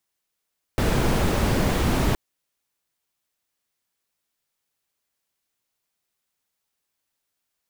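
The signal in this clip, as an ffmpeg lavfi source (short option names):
-f lavfi -i "anoisesrc=c=brown:a=0.442:d=1.37:r=44100:seed=1"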